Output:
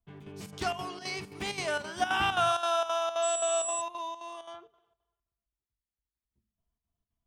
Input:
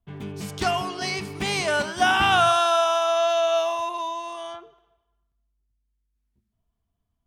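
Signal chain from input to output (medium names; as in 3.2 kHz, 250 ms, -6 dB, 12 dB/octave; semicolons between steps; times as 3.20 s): square tremolo 3.8 Hz, depth 65%, duty 75%; hum notches 50/100/150/200/250 Hz; 3.22–3.80 s: whistle 7.8 kHz -24 dBFS; trim -7.5 dB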